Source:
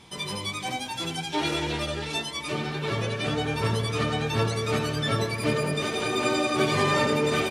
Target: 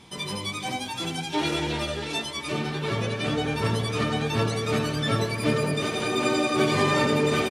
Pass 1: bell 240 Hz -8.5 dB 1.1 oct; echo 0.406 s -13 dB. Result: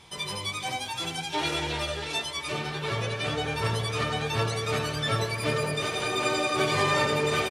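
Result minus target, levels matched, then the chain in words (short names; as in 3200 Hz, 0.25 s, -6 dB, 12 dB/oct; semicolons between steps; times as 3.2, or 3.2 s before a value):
250 Hz band -6.0 dB
bell 240 Hz +3 dB 1.1 oct; echo 0.406 s -13 dB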